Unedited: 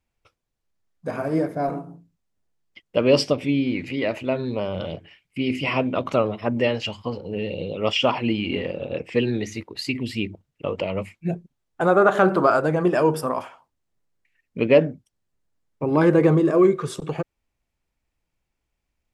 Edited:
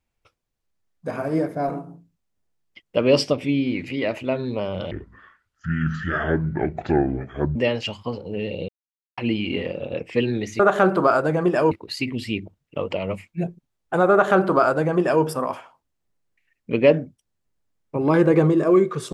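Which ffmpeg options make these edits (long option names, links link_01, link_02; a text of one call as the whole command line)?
ffmpeg -i in.wav -filter_complex "[0:a]asplit=7[link_01][link_02][link_03][link_04][link_05][link_06][link_07];[link_01]atrim=end=4.914[link_08];[link_02]atrim=start=4.91:end=6.55,asetpts=PTS-STARTPTS,asetrate=27342,aresample=44100[link_09];[link_03]atrim=start=6.546:end=7.68,asetpts=PTS-STARTPTS,afade=type=out:start_time=1.13:duration=0.004:curve=hsin[link_10];[link_04]atrim=start=7.68:end=8.17,asetpts=PTS-STARTPTS,volume=0[link_11];[link_05]atrim=start=8.17:end=9.592,asetpts=PTS-STARTPTS,afade=type=in:duration=0.004:curve=hsin[link_12];[link_06]atrim=start=11.988:end=13.112[link_13];[link_07]atrim=start=9.588[link_14];[link_08][link_09]acrossfade=duration=0.004:curve1=hsin:curve2=hsin[link_15];[link_10][link_11][link_12]concat=n=3:v=0:a=1[link_16];[link_15][link_16]acrossfade=duration=0.004:curve1=hsin:curve2=hsin[link_17];[link_17][link_13]acrossfade=duration=0.004:curve1=hsin:curve2=hsin[link_18];[link_18][link_14]acrossfade=duration=0.004:curve1=hsin:curve2=hsin" out.wav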